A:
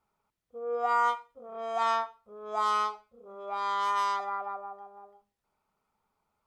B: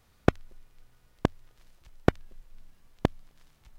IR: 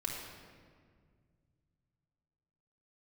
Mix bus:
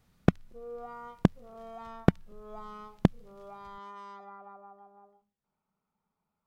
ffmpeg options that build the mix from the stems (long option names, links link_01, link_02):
-filter_complex "[0:a]highshelf=frequency=5200:gain=-9,acrossover=split=430[link_01][link_02];[link_02]acompressor=threshold=-41dB:ratio=3[link_03];[link_01][link_03]amix=inputs=2:normalize=0,volume=-7.5dB[link_04];[1:a]dynaudnorm=framelen=100:gausssize=11:maxgain=5dB,volume=-5.5dB[link_05];[link_04][link_05]amix=inputs=2:normalize=0,equalizer=frequency=180:width=1.6:gain=11.5"